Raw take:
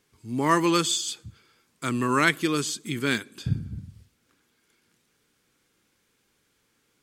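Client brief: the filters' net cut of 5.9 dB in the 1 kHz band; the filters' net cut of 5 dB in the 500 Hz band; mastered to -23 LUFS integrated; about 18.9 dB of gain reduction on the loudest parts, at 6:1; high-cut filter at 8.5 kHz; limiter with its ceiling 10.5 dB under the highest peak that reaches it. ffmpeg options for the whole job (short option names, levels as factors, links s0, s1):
-af "lowpass=8500,equalizer=f=500:t=o:g=-6.5,equalizer=f=1000:t=o:g=-6,acompressor=threshold=0.0112:ratio=6,volume=11.2,alimiter=limit=0.266:level=0:latency=1"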